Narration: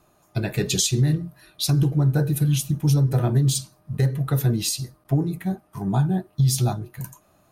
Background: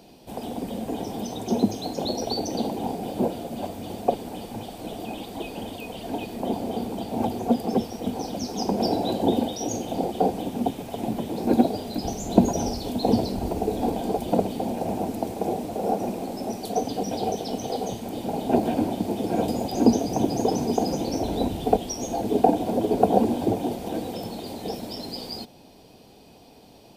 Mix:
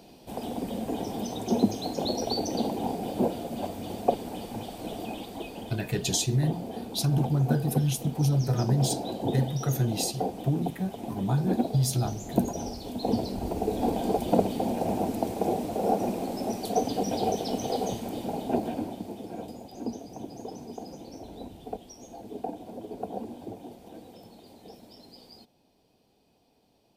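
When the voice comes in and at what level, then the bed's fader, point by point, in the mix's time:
5.35 s, -5.5 dB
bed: 4.99 s -1.5 dB
5.96 s -8 dB
12.76 s -8 dB
14.06 s -0.5 dB
17.96 s -0.5 dB
19.63 s -16.5 dB

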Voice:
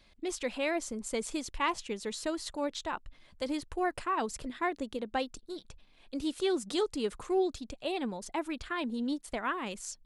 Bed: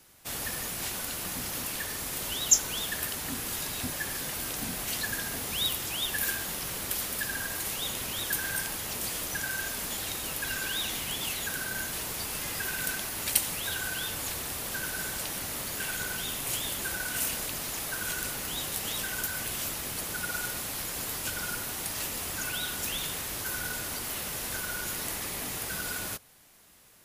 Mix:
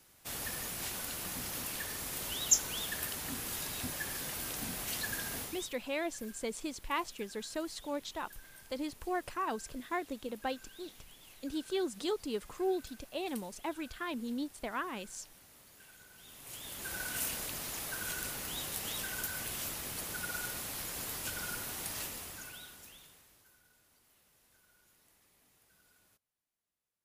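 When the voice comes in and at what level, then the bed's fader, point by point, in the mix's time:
5.30 s, -4.0 dB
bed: 5.41 s -5 dB
5.75 s -24 dB
16.11 s -24 dB
16.99 s -5.5 dB
21.98 s -5.5 dB
23.63 s -34 dB

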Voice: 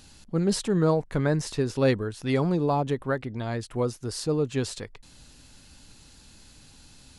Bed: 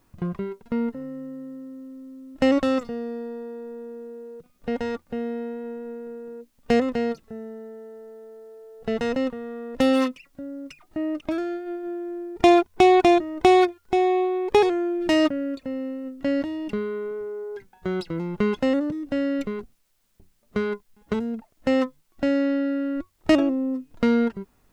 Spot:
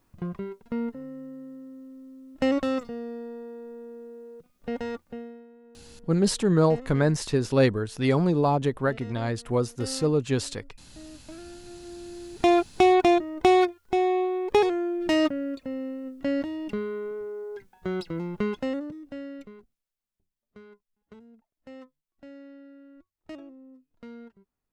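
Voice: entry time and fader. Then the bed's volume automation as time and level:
5.75 s, +2.0 dB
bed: 5.05 s -4.5 dB
5.47 s -19 dB
11.18 s -19 dB
12.65 s -3 dB
18.25 s -3 dB
20.21 s -24 dB

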